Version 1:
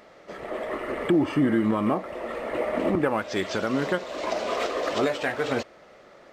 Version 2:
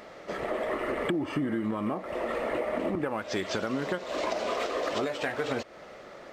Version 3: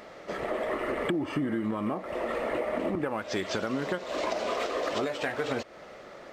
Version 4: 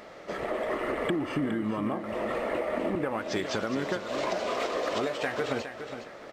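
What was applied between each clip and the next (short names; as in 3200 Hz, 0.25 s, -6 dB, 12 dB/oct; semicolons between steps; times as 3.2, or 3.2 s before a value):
compressor, threshold -32 dBFS, peak gain reduction 14 dB; gain +4.5 dB
nothing audible
feedback echo 0.413 s, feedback 28%, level -9.5 dB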